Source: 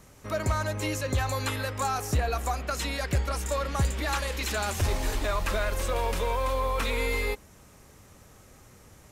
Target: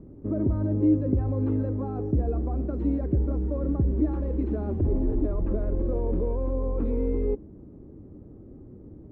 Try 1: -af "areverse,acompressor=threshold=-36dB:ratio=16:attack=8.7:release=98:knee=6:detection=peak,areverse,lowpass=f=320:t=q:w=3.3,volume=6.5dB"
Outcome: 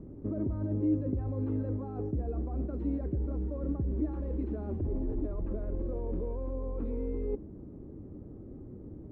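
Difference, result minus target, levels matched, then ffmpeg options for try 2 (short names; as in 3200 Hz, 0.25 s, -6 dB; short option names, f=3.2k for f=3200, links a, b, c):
compressor: peak gain reduction +9 dB
-af "areverse,acompressor=threshold=-26.5dB:ratio=16:attack=8.7:release=98:knee=6:detection=peak,areverse,lowpass=f=320:t=q:w=3.3,volume=6.5dB"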